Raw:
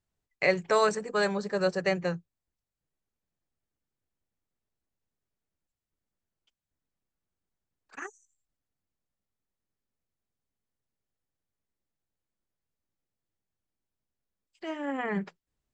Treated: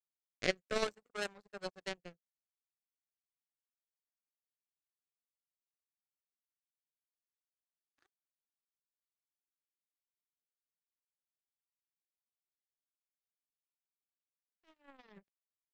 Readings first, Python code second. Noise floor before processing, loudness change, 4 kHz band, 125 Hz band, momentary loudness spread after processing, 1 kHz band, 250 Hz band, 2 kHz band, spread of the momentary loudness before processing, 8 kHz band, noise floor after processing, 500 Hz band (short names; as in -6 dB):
under -85 dBFS, -11.0 dB, -5.5 dB, -16.5 dB, 11 LU, -15.5 dB, -15.5 dB, -11.0 dB, 18 LU, -7.5 dB, under -85 dBFS, -13.5 dB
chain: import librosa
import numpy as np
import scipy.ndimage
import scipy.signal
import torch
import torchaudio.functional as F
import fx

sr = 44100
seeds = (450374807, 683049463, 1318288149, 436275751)

y = fx.power_curve(x, sr, exponent=3.0)
y = fx.rotary(y, sr, hz=0.6)
y = y * librosa.db_to_amplitude(3.5)